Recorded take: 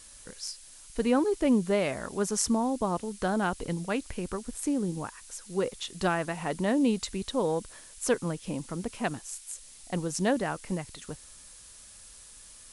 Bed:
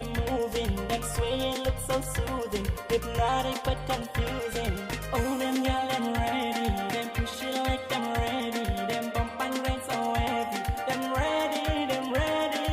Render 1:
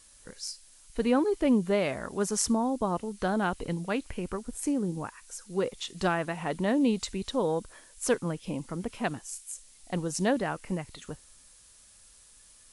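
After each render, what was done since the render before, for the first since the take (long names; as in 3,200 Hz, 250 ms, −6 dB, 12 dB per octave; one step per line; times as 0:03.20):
noise reduction from a noise print 6 dB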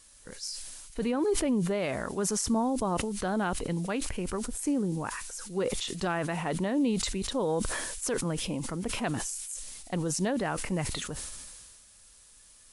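brickwall limiter −20.5 dBFS, peak gain reduction 9 dB
level that may fall only so fast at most 29 dB per second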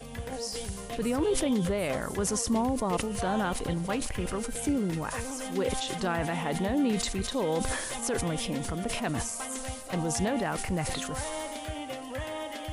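mix in bed −9 dB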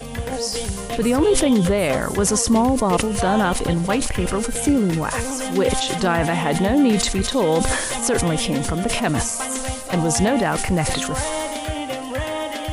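level +10.5 dB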